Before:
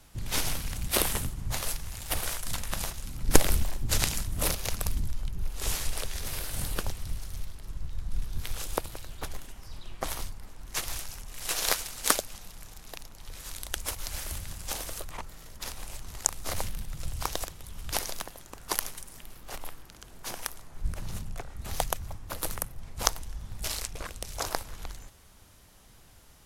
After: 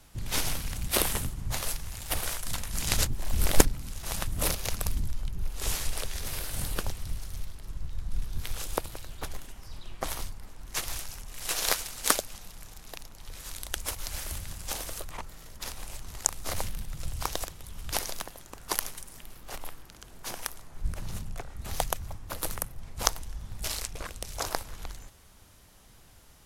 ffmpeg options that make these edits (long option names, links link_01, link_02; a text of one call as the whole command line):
ffmpeg -i in.wav -filter_complex "[0:a]asplit=3[link_01][link_02][link_03];[link_01]atrim=end=2.692[link_04];[link_02]atrim=start=2.688:end=4.272,asetpts=PTS-STARTPTS,areverse[link_05];[link_03]atrim=start=4.268[link_06];[link_04][link_05]acrossfade=duration=0.004:curve1=hsin:curve2=hsin[link_07];[link_07][link_06]acrossfade=duration=0.004:curve1=hsin:curve2=hsin" out.wav